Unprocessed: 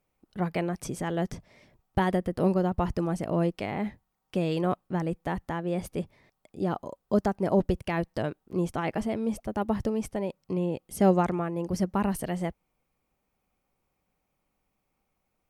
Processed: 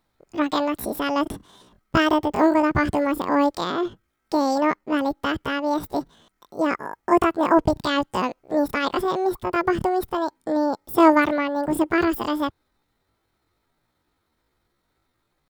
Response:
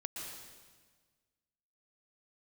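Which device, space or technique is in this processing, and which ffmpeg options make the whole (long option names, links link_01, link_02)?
chipmunk voice: -filter_complex "[0:a]asetrate=74167,aresample=44100,atempo=0.594604,asplit=3[link_01][link_02][link_03];[link_01]afade=type=out:start_time=3.71:duration=0.02[link_04];[link_02]adynamicequalizer=threshold=0.00631:dfrequency=2000:dqfactor=0.7:tfrequency=2000:tqfactor=0.7:attack=5:release=100:ratio=0.375:range=2.5:mode=cutabove:tftype=highshelf,afade=type=in:start_time=3.71:duration=0.02,afade=type=out:start_time=4.92:duration=0.02[link_05];[link_03]afade=type=in:start_time=4.92:duration=0.02[link_06];[link_04][link_05][link_06]amix=inputs=3:normalize=0,volume=6.5dB"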